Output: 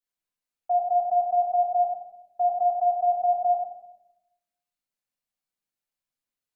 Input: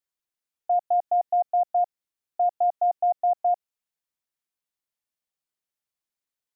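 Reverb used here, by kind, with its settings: simulated room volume 250 m³, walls mixed, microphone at 1.9 m; trim -6.5 dB

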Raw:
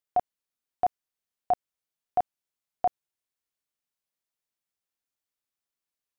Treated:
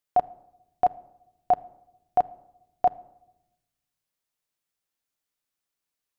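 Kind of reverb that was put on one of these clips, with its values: simulated room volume 3400 m³, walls furnished, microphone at 0.46 m; trim +3.5 dB

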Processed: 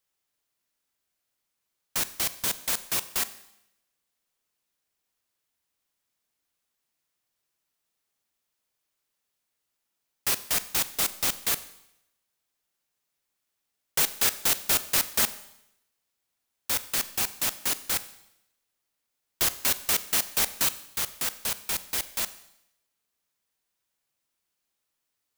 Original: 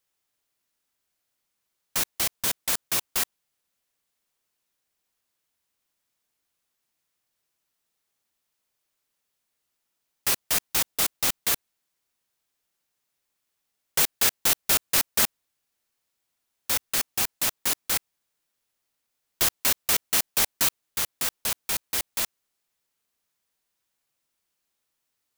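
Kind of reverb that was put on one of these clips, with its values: Schroeder reverb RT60 0.81 s, combs from 30 ms, DRR 14 dB; trim -2 dB

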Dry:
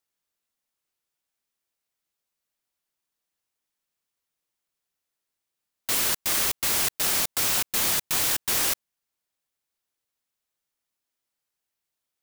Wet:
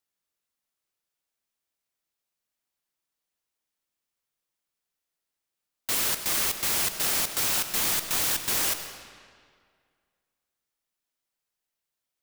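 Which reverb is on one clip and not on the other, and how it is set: algorithmic reverb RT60 2 s, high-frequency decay 0.8×, pre-delay 55 ms, DRR 8 dB; trim -2 dB

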